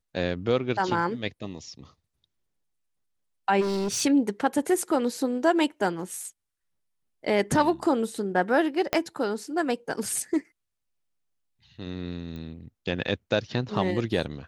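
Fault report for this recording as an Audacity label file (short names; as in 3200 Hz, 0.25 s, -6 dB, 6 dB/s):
3.600000	4.020000	clipped -24.5 dBFS
8.930000	8.930000	pop -9 dBFS
12.360000	12.360000	pop -28 dBFS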